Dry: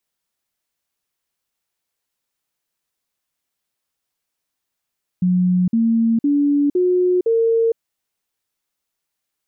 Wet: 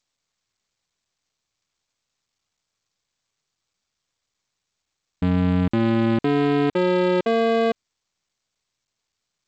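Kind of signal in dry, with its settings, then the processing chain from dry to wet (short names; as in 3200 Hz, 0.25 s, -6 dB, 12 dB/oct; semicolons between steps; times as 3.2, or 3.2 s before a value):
stepped sine 181 Hz up, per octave 3, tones 5, 0.46 s, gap 0.05 s -13 dBFS
cycle switcher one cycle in 2, muted; G.722 64 kbps 16000 Hz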